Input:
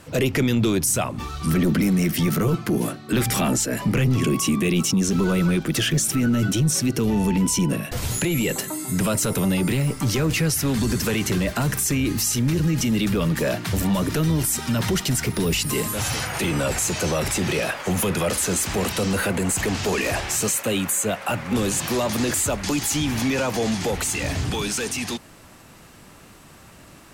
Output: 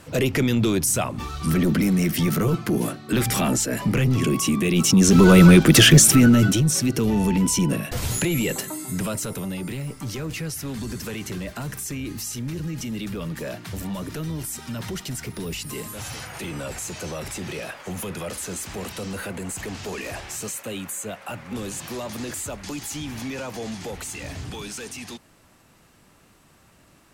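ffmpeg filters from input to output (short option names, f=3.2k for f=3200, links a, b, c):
-af "volume=10dB,afade=t=in:st=4.71:d=0.71:silence=0.298538,afade=t=out:st=5.92:d=0.71:silence=0.316228,afade=t=out:st=8.23:d=1.23:silence=0.354813"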